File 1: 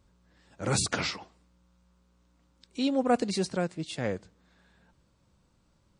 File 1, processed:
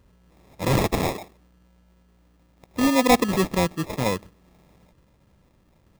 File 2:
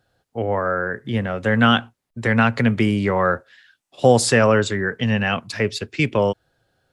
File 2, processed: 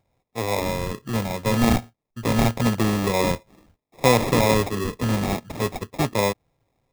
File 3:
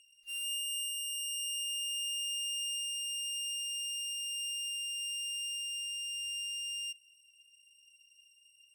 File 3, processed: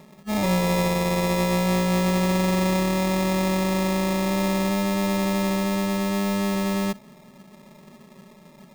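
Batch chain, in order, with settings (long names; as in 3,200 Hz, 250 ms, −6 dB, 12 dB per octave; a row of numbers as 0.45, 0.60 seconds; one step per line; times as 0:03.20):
loose part that buzzes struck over −21 dBFS, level −15 dBFS
sample-rate reduction 1,500 Hz, jitter 0%
loudness normalisation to −23 LKFS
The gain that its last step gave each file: +7.5, −3.0, +15.0 decibels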